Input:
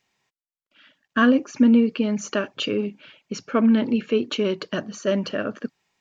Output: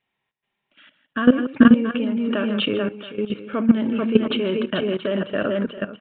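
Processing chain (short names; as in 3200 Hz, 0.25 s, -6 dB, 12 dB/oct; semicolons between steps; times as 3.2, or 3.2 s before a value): tapped delay 54/152/433/438/676 ms -20/-13/-15.5/-6/-12.5 dB; level quantiser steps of 14 dB; downsampling 8000 Hz; gain +6 dB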